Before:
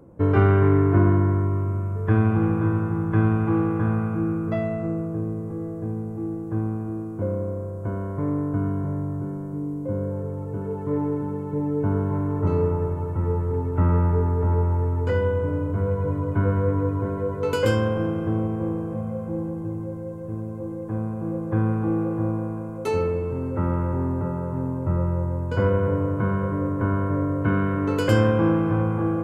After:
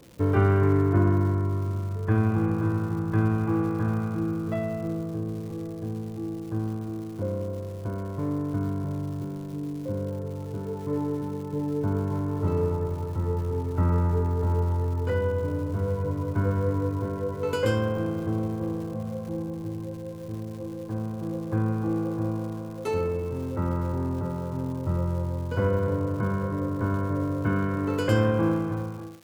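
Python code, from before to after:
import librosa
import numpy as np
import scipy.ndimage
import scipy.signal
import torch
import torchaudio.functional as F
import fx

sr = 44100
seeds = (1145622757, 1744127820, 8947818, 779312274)

y = fx.fade_out_tail(x, sr, length_s=0.79)
y = fx.dmg_crackle(y, sr, seeds[0], per_s=340.0, level_db=-37.0)
y = F.gain(torch.from_numpy(y), -3.5).numpy()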